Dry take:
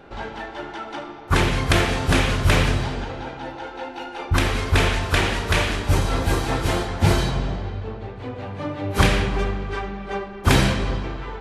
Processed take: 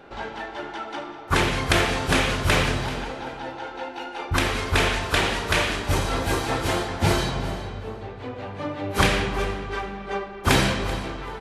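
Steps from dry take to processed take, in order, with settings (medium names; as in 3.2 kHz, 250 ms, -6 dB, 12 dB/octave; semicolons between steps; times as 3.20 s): bass shelf 190 Hz -7 dB; on a send: feedback delay 385 ms, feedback 18%, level -15.5 dB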